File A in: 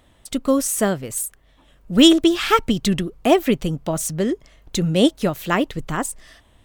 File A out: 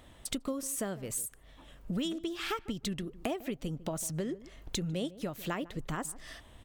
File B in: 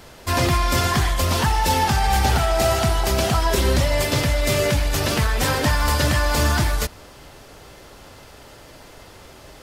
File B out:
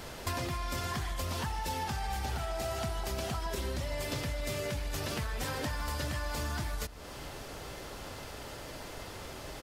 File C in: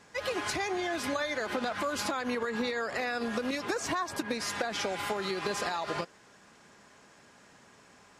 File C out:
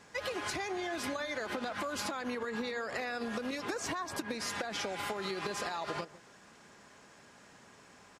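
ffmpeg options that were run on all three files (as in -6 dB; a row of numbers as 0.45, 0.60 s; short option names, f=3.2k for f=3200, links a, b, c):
-filter_complex "[0:a]acompressor=threshold=-33dB:ratio=8,asplit=2[a][b];[b]adelay=150,lowpass=f=810:p=1,volume=-16dB,asplit=2[c][d];[d]adelay=150,lowpass=f=810:p=1,volume=0.16[e];[a][c][e]amix=inputs=3:normalize=0"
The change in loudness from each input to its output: -17.0, -17.0, -4.5 LU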